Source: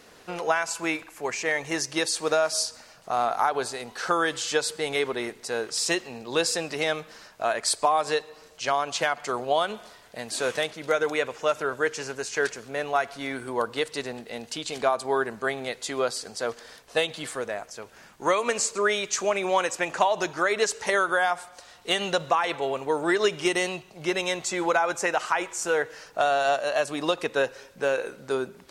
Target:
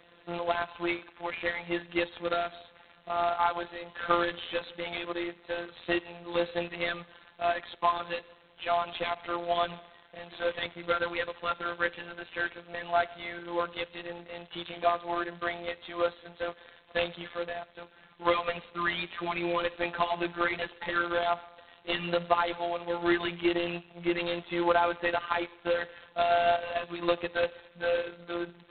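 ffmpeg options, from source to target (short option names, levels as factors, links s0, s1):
-af "highpass=f=110:w=0.5412,highpass=f=110:w=1.3066,afftfilt=real='hypot(re,im)*cos(PI*b)':imag='0':win_size=1024:overlap=0.75" -ar 8000 -c:a adpcm_g726 -b:a 16k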